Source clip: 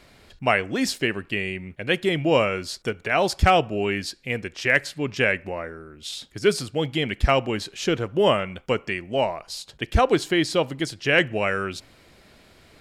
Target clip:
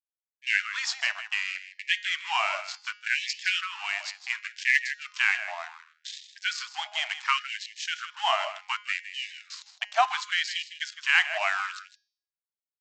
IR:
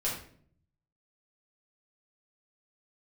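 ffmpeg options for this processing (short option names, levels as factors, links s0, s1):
-filter_complex "[0:a]aresample=16000,aeval=exprs='sgn(val(0))*max(abs(val(0))-0.0178,0)':c=same,aresample=44100,acontrast=48,bandreject=f=207.3:t=h:w=4,bandreject=f=414.6:t=h:w=4,bandreject=f=621.9:t=h:w=4,bandreject=f=829.2:t=h:w=4,bandreject=f=1036.5:t=h:w=4,bandreject=f=1243.8:t=h:w=4,bandreject=f=1451.1:t=h:w=4,bandreject=f=1658.4:t=h:w=4,bandreject=f=1865.7:t=h:w=4,bandreject=f=2073:t=h:w=4,bandreject=f=2280.3:t=h:w=4,bandreject=f=2487.6:t=h:w=4,bandreject=f=2694.9:t=h:w=4,bandreject=f=2902.2:t=h:w=4,bandreject=f=3109.5:t=h:w=4,bandreject=f=3316.8:t=h:w=4,bandreject=f=3524.1:t=h:w=4,bandreject=f=3731.4:t=h:w=4,bandreject=f=3938.7:t=h:w=4,bandreject=f=4146:t=h:w=4,bandreject=f=4353.3:t=h:w=4,bandreject=f=4560.6:t=h:w=4,bandreject=f=4767.9:t=h:w=4,bandreject=f=4975.2:t=h:w=4,bandreject=f=5182.5:t=h:w=4,bandreject=f=5389.8:t=h:w=4,bandreject=f=5597.1:t=h:w=4,bandreject=f=5804.4:t=h:w=4,bandreject=f=6011.7:t=h:w=4,bandreject=f=6219:t=h:w=4,bandreject=f=6426.3:t=h:w=4,bandreject=f=6633.6:t=h:w=4,bandreject=f=6840.9:t=h:w=4,bandreject=f=7048.2:t=h:w=4,bandreject=f=7255.5:t=h:w=4,asplit=2[s0][s1];[s1]aecho=0:1:159:0.237[s2];[s0][s2]amix=inputs=2:normalize=0,afftfilt=real='re*gte(b*sr/1024,600*pow(1700/600,0.5+0.5*sin(2*PI*0.68*pts/sr)))':imag='im*gte(b*sr/1024,600*pow(1700/600,0.5+0.5*sin(2*PI*0.68*pts/sr)))':win_size=1024:overlap=0.75,volume=0.596"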